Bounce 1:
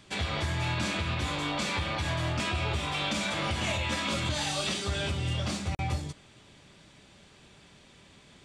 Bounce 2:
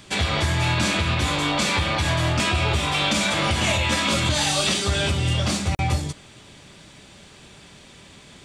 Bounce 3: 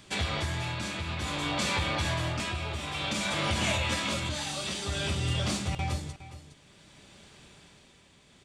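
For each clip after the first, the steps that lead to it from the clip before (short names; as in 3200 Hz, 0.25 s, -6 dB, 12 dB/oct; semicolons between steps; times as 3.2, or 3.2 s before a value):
high shelf 7500 Hz +6 dB; gain +8.5 dB
echo 0.412 s -10.5 dB; tremolo 0.55 Hz, depth 52%; gain -7 dB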